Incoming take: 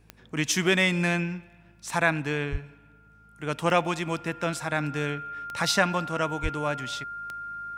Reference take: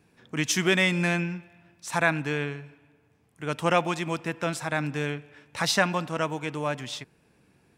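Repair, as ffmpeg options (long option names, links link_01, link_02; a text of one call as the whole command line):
ffmpeg -i in.wav -filter_complex "[0:a]adeclick=threshold=4,bandreject=frequency=53.1:width_type=h:width=4,bandreject=frequency=106.2:width_type=h:width=4,bandreject=frequency=159.3:width_type=h:width=4,bandreject=frequency=212.4:width_type=h:width=4,bandreject=frequency=1400:width=30,asplit=3[link_01][link_02][link_03];[link_01]afade=type=out:start_time=2.51:duration=0.02[link_04];[link_02]highpass=frequency=140:width=0.5412,highpass=frequency=140:width=1.3066,afade=type=in:start_time=2.51:duration=0.02,afade=type=out:start_time=2.63:duration=0.02[link_05];[link_03]afade=type=in:start_time=2.63:duration=0.02[link_06];[link_04][link_05][link_06]amix=inputs=3:normalize=0,asplit=3[link_07][link_08][link_09];[link_07]afade=type=out:start_time=6.42:duration=0.02[link_10];[link_08]highpass=frequency=140:width=0.5412,highpass=frequency=140:width=1.3066,afade=type=in:start_time=6.42:duration=0.02,afade=type=out:start_time=6.54:duration=0.02[link_11];[link_09]afade=type=in:start_time=6.54:duration=0.02[link_12];[link_10][link_11][link_12]amix=inputs=3:normalize=0" out.wav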